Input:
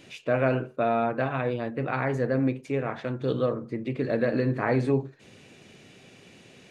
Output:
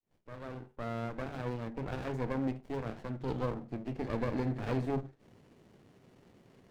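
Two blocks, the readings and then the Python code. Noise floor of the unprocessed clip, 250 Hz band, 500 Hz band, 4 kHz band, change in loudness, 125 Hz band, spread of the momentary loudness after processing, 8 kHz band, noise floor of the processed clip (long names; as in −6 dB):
−53 dBFS, −8.5 dB, −12.0 dB, −8.0 dB, −10.0 dB, −8.0 dB, 11 LU, can't be measured, −69 dBFS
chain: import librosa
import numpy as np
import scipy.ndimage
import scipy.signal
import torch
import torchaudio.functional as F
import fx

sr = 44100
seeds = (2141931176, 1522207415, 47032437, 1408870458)

y = fx.fade_in_head(x, sr, length_s=1.51)
y = fx.running_max(y, sr, window=33)
y = y * 10.0 ** (-7.0 / 20.0)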